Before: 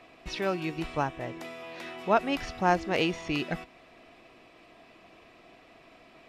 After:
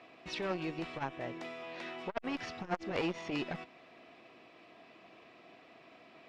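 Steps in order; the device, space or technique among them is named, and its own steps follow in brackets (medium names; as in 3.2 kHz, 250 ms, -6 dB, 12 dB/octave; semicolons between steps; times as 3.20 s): valve radio (band-pass 130–5500 Hz; valve stage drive 17 dB, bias 0.65; transformer saturation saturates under 1.1 kHz); trim +1 dB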